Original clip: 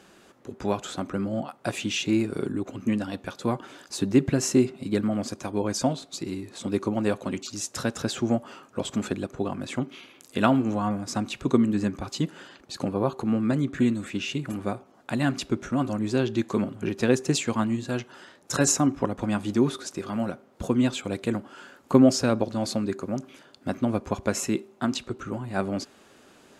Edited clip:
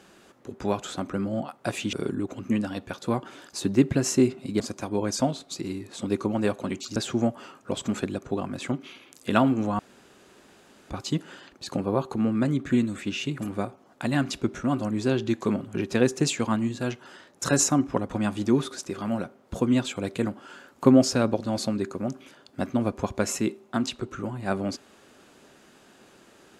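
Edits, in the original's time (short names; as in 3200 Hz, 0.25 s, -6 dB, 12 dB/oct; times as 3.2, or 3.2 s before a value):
1.93–2.3 cut
4.97–5.22 cut
7.58–8.04 cut
10.87–11.98 room tone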